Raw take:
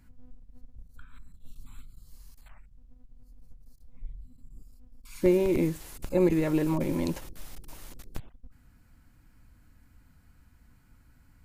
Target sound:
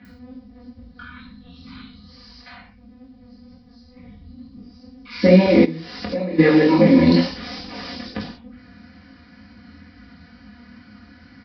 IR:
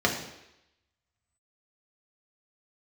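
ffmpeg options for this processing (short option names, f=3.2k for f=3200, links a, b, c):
-filter_complex "[0:a]aecho=1:1:4:0.95,flanger=delay=19:depth=6.2:speed=2.2,aresample=11025,aresample=44100,asplit=2[a][b];[b]alimiter=level_in=2.5dB:limit=-24dB:level=0:latency=1:release=21,volume=-2.5dB,volume=2.5dB[c];[a][c]amix=inputs=2:normalize=0,bass=f=250:g=10,treble=f=4k:g=6,acrossover=split=3300[d][e];[e]adelay=50[f];[d][f]amix=inputs=2:normalize=0[g];[1:a]atrim=start_sample=2205,atrim=end_sample=6174[h];[g][h]afir=irnorm=-1:irlink=0,asplit=3[i][j][k];[i]afade=t=out:st=5.64:d=0.02[l];[j]acompressor=threshold=-15dB:ratio=8,afade=t=in:st=5.64:d=0.02,afade=t=out:st=6.38:d=0.02[m];[k]afade=t=in:st=6.38:d=0.02[n];[l][m][n]amix=inputs=3:normalize=0,aemphasis=mode=production:type=riaa,volume=-2.5dB"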